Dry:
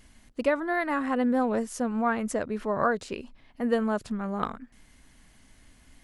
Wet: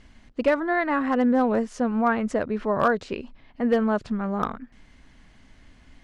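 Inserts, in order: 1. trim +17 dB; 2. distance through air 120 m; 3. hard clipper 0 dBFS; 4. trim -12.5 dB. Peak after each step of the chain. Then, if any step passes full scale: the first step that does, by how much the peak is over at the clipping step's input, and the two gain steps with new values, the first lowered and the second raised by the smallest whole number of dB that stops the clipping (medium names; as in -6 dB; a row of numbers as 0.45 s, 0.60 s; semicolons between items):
+5.5 dBFS, +5.0 dBFS, 0.0 dBFS, -12.5 dBFS; step 1, 5.0 dB; step 1 +12 dB, step 4 -7.5 dB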